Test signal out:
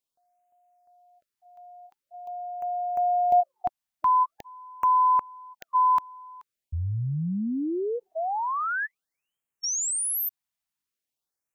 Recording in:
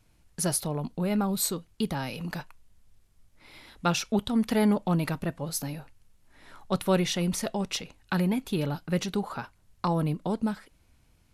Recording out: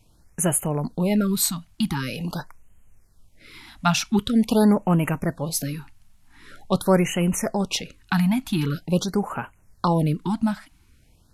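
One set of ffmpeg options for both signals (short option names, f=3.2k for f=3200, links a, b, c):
-af "afftfilt=real='re*(1-between(b*sr/1024,400*pow(4600/400,0.5+0.5*sin(2*PI*0.45*pts/sr))/1.41,400*pow(4600/400,0.5+0.5*sin(2*PI*0.45*pts/sr))*1.41))':imag='im*(1-between(b*sr/1024,400*pow(4600/400,0.5+0.5*sin(2*PI*0.45*pts/sr))/1.41,400*pow(4600/400,0.5+0.5*sin(2*PI*0.45*pts/sr))*1.41))':win_size=1024:overlap=0.75,volume=6dB"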